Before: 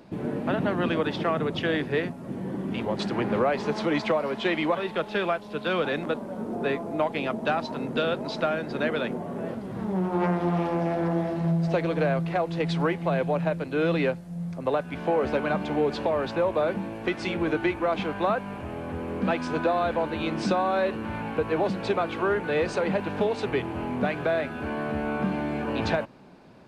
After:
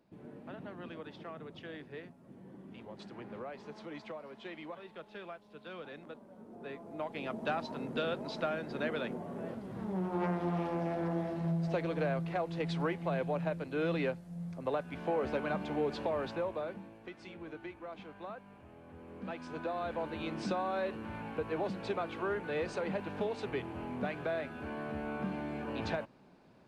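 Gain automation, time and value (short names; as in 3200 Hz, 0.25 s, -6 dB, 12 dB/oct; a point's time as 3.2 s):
6.5 s -20 dB
7.42 s -8.5 dB
16.25 s -8.5 dB
17.08 s -20 dB
18.83 s -20 dB
20.07 s -10 dB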